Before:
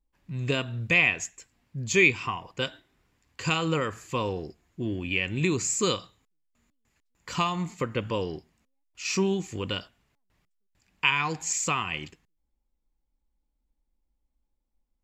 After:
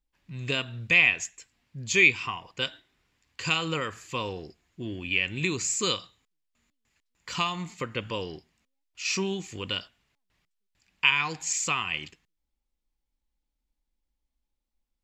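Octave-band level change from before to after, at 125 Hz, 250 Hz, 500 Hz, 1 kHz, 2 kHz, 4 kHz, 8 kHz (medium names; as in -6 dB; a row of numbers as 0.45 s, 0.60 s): -5.0 dB, -5.0 dB, -4.5 dB, -2.5 dB, +1.5 dB, +2.5 dB, 0.0 dB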